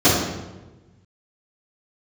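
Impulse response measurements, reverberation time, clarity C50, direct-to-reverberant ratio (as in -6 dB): 1.2 s, 0.5 dB, -16.0 dB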